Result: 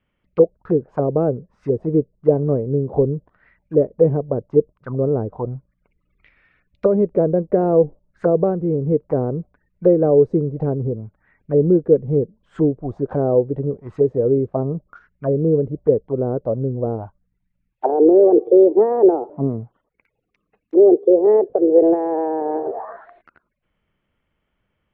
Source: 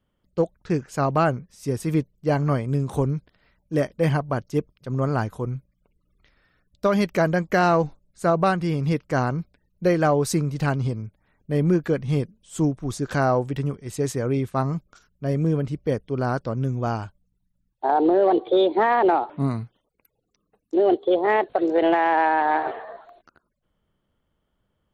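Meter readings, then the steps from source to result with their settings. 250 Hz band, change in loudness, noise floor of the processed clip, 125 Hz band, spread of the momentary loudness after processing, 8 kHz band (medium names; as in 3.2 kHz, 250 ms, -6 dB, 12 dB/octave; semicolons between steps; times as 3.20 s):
+4.5 dB, +5.0 dB, -74 dBFS, +1.0 dB, 13 LU, under -35 dB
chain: touch-sensitive low-pass 460–2400 Hz down, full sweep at -21 dBFS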